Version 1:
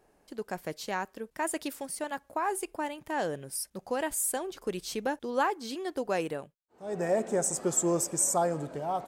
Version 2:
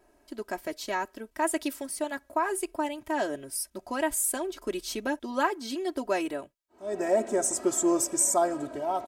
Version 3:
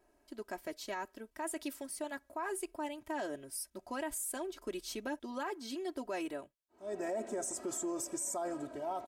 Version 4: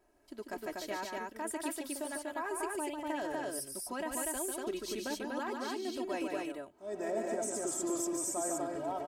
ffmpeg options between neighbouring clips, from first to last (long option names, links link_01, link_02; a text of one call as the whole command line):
ffmpeg -i in.wav -af "aecho=1:1:3.1:0.87" out.wav
ffmpeg -i in.wav -af "alimiter=limit=-22dB:level=0:latency=1:release=30,volume=-7.5dB" out.wav
ffmpeg -i in.wav -af "aecho=1:1:145.8|242:0.562|0.794" out.wav